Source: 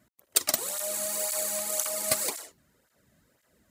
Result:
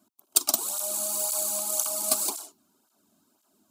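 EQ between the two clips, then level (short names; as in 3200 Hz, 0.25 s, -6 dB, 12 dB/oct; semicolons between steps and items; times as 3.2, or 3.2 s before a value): HPF 120 Hz 24 dB/oct; fixed phaser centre 510 Hz, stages 6; +3.0 dB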